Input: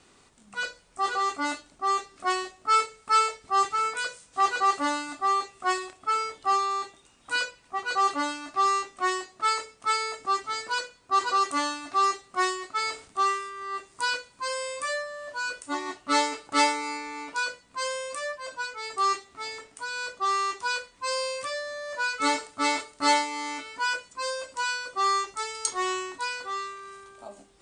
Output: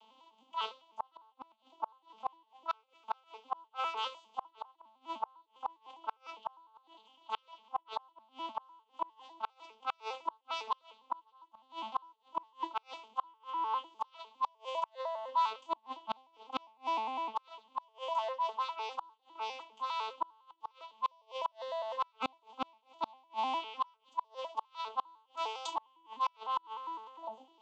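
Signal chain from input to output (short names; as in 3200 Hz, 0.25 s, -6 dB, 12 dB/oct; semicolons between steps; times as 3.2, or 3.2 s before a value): arpeggiated vocoder minor triad, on A3, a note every 0.101 s; double band-pass 1700 Hz, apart 1.7 oct; flipped gate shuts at -32 dBFS, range -38 dB; gain +10.5 dB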